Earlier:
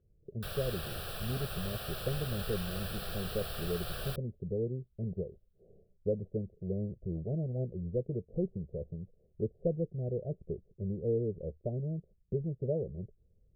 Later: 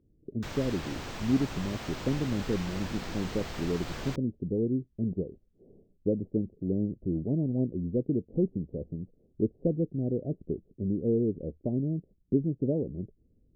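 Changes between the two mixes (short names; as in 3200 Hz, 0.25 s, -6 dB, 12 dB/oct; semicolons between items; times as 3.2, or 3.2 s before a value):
background: add running mean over 4 samples; master: remove fixed phaser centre 1400 Hz, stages 8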